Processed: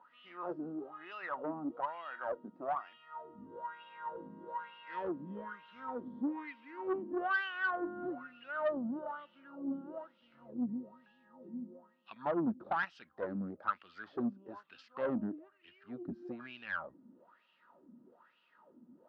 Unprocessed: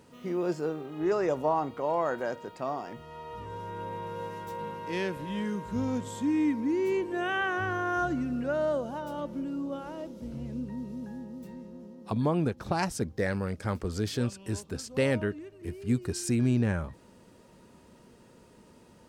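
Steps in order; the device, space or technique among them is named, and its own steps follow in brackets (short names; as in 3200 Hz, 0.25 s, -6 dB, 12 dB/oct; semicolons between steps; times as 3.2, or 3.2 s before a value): wah-wah guitar rig (wah 1.1 Hz 230–2900 Hz, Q 5.8; tube stage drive 32 dB, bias 0.3; speaker cabinet 91–4000 Hz, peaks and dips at 110 Hz -10 dB, 440 Hz -9 dB, 1300 Hz +7 dB, 2300 Hz -8 dB); gain +6.5 dB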